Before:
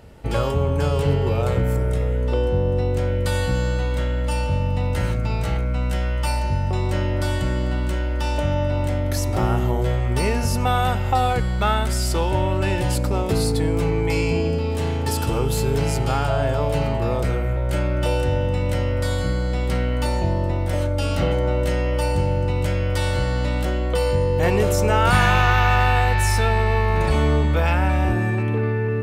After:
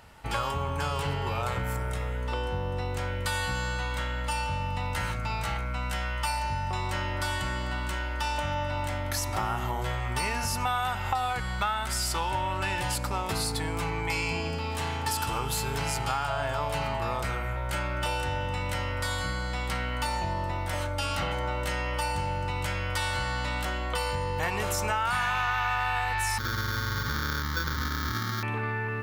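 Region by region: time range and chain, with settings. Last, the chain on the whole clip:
26.38–28.43 s: high-pass 66 Hz + sample-rate reducer 1 kHz + static phaser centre 2.6 kHz, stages 6
whole clip: resonant low shelf 680 Hz -10 dB, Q 1.5; compression, threshold -25 dBFS

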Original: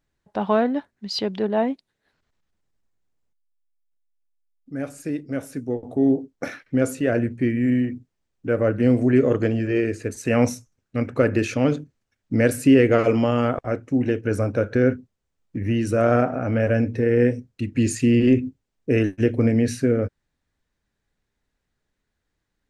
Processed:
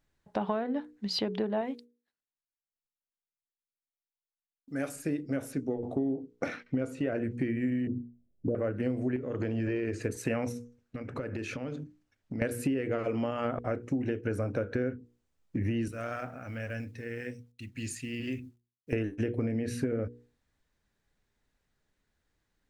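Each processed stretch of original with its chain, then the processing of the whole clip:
1.61–4.96 s: expander -57 dBFS + tilt EQ +2 dB/octave
5.52–7.16 s: distance through air 57 m + band-stop 1.7 kHz
7.87–8.55 s: elliptic low-pass 670 Hz + bass shelf 350 Hz +7 dB
9.16–10.01 s: compression 10:1, threshold -23 dBFS + distance through air 59 m
10.52–12.42 s: treble shelf 7.6 kHz -7 dB + compression 8:1, threshold -32 dBFS
15.88–18.93 s: amplifier tone stack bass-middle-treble 5-5-5 + companded quantiser 8-bit
whole clip: dynamic bell 6.2 kHz, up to -6 dB, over -47 dBFS, Q 0.98; hum notches 60/120/180/240/300/360/420/480 Hz; compression 12:1, threshold -27 dBFS

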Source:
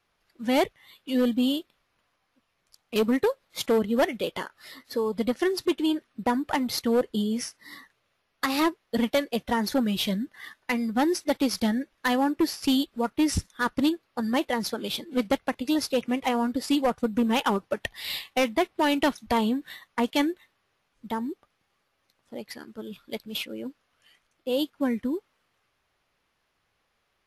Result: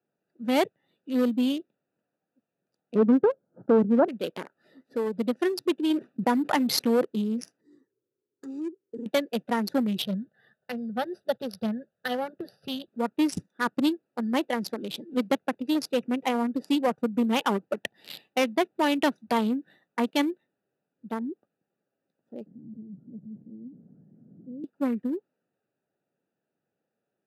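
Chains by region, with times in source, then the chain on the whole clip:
2.95–4.08 s: steep low-pass 1.6 kHz 96 dB/octave + bass shelf 280 Hz +8.5 dB
5.90–7.05 s: expander -51 dBFS + level flattener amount 50%
7.61–9.06 s: FFT filter 110 Hz 0 dB, 190 Hz -14 dB, 390 Hz +7 dB, 700 Hz -22 dB, 1 kHz -8 dB, 2 kHz -17 dB, 3.3 kHz -16 dB, 4.9 kHz -8 dB, 7.4 kHz +8 dB, 11 kHz -14 dB + compression 2.5:1, threshold -32 dBFS
10.02–12.88 s: bass shelf 220 Hz +9 dB + static phaser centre 1.5 kHz, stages 8
22.46–24.64 s: one-bit delta coder 16 kbps, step -30.5 dBFS + Butterworth band-pass 160 Hz, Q 1.3 + tape noise reduction on one side only encoder only
whole clip: local Wiener filter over 41 samples; high-pass 150 Hz 24 dB/octave

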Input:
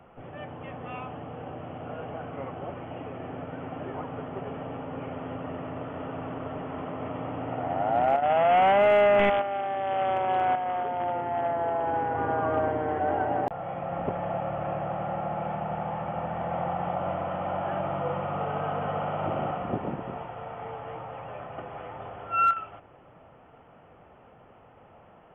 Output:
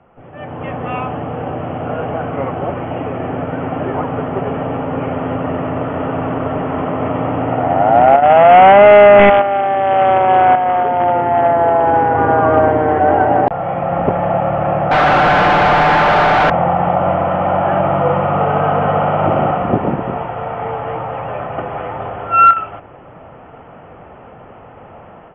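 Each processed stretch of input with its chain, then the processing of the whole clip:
14.91–16.50 s: comb filter that takes the minimum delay 6.7 ms + overdrive pedal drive 35 dB, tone 3 kHz, clips at -20.5 dBFS
whole clip: low-pass 2.8 kHz 12 dB/octave; level rider gain up to 14 dB; trim +2 dB

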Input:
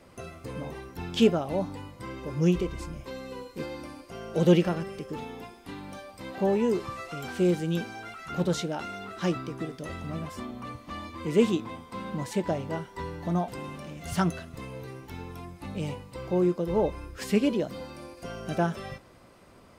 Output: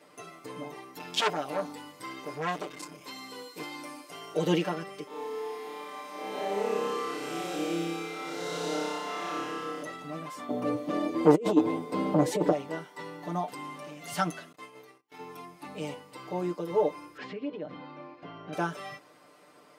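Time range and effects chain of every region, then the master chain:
0.94–4.34 s: treble shelf 2.4 kHz +7.5 dB + transformer saturation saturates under 2.2 kHz
5.07–9.83 s: spectral blur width 417 ms + high-pass 250 Hz + flutter echo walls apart 5.1 m, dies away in 1.5 s
10.49–12.52 s: resonant low shelf 730 Hz +11.5 dB, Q 1.5 + compressor with a negative ratio -16 dBFS, ratio -0.5 + transformer saturation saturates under 440 Hz
14.52–15.19 s: gate -40 dBFS, range -32 dB + bass shelf 280 Hz -10.5 dB
17.17–18.53 s: Bessel low-pass 2.5 kHz, order 4 + bass shelf 150 Hz +10.5 dB + compression 4:1, threshold -31 dBFS
whole clip: high-pass 300 Hz 12 dB/octave; comb 6.7 ms, depth 98%; trim -3 dB

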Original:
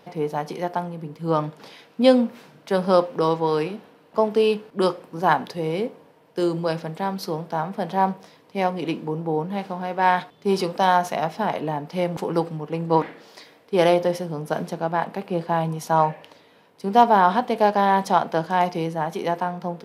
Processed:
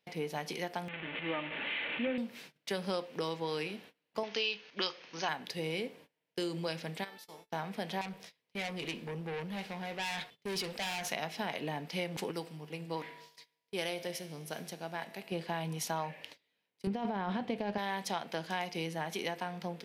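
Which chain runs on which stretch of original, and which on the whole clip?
0.88–2.18 s: one-bit delta coder 16 kbps, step -26.5 dBFS + high-pass 260 Hz 6 dB/octave + comb 3.4 ms, depth 34%
4.23–5.29 s: brick-wall FIR low-pass 6.7 kHz + tilt shelf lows -8.5 dB, about 630 Hz
7.03–7.51 s: spectral peaks clipped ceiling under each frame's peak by 16 dB + feedback comb 440 Hz, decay 0.74 s, mix 90% + dynamic bell 650 Hz, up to +5 dB, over -47 dBFS, Q 1.1
8.01–11.10 s: valve stage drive 25 dB, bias 0.2 + band-stop 300 Hz, Q 5.8
12.31–15.32 s: treble shelf 6 kHz +7.5 dB + feedback comb 51 Hz, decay 2 s, harmonics odd
16.87–17.78 s: RIAA curve playback + compressor with a negative ratio -17 dBFS
whole clip: gate -45 dBFS, range -23 dB; resonant high shelf 1.6 kHz +9 dB, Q 1.5; compression 4:1, threshold -24 dBFS; trim -8.5 dB

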